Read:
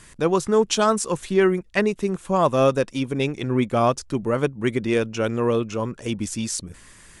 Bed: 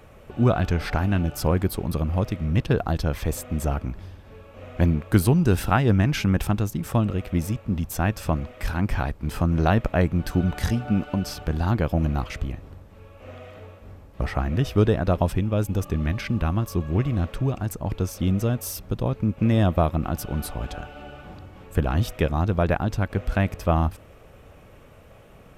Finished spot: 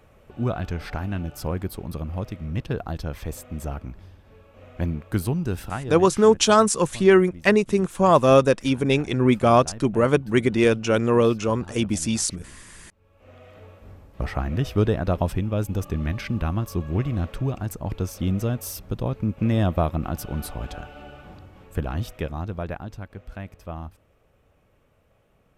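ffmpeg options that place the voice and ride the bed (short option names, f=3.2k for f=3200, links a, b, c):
-filter_complex "[0:a]adelay=5700,volume=3dB[a];[1:a]volume=11.5dB,afade=t=out:st=5.38:d=0.75:silence=0.223872,afade=t=in:st=12.97:d=0.86:silence=0.133352,afade=t=out:st=20.96:d=2.19:silence=0.237137[b];[a][b]amix=inputs=2:normalize=0"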